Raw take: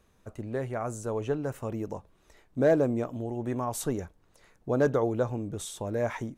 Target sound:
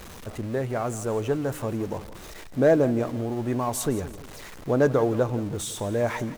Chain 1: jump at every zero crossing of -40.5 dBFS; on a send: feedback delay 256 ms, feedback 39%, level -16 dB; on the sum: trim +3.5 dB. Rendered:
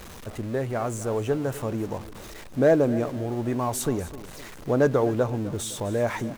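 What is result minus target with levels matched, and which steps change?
echo 88 ms late
change: feedback delay 168 ms, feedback 39%, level -16 dB

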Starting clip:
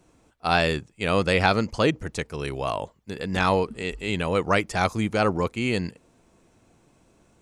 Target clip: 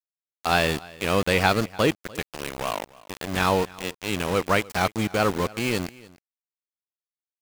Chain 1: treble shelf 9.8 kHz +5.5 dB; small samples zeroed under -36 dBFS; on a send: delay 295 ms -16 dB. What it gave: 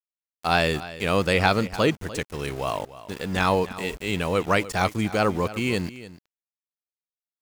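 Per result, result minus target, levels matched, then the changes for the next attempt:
small samples zeroed: distortion -12 dB; echo-to-direct +6 dB
change: small samples zeroed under -25.5 dBFS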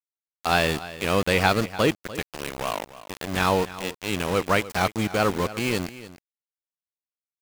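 echo-to-direct +6 dB
change: delay 295 ms -22 dB

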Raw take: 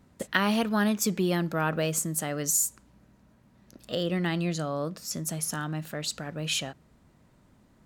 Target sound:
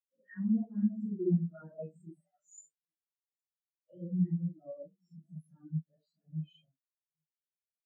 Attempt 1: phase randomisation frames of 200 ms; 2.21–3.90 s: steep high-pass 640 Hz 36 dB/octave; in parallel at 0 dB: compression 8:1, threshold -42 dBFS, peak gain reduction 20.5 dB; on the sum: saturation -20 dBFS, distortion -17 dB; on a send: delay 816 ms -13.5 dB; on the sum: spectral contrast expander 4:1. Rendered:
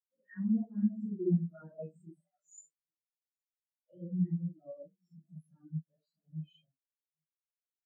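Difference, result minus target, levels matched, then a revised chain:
compression: peak gain reduction +6 dB
phase randomisation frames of 200 ms; 2.21–3.90 s: steep high-pass 640 Hz 36 dB/octave; in parallel at 0 dB: compression 8:1, threshold -35 dBFS, peak gain reduction 14.5 dB; on the sum: saturation -20 dBFS, distortion -16 dB; on a send: delay 816 ms -13.5 dB; on the sum: spectral contrast expander 4:1

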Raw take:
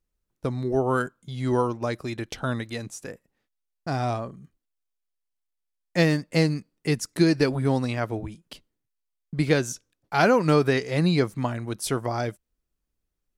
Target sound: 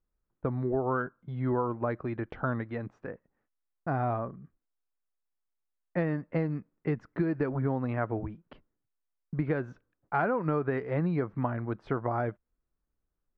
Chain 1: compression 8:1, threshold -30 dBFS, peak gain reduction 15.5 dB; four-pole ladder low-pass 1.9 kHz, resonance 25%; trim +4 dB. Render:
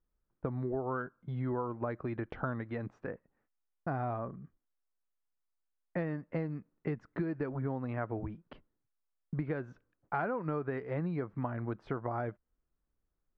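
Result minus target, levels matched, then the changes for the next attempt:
compression: peak gain reduction +6 dB
change: compression 8:1, threshold -23 dBFS, peak gain reduction 9.5 dB

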